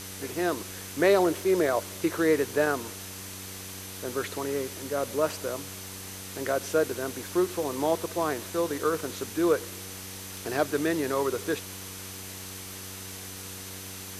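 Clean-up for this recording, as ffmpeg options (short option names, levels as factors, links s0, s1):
-af "adeclick=t=4,bandreject=f=95.3:t=h:w=4,bandreject=f=190.6:t=h:w=4,bandreject=f=285.9:t=h:w=4,bandreject=f=381.2:t=h:w=4,bandreject=f=476.5:t=h:w=4,bandreject=f=6100:w=30,afwtdn=0.01"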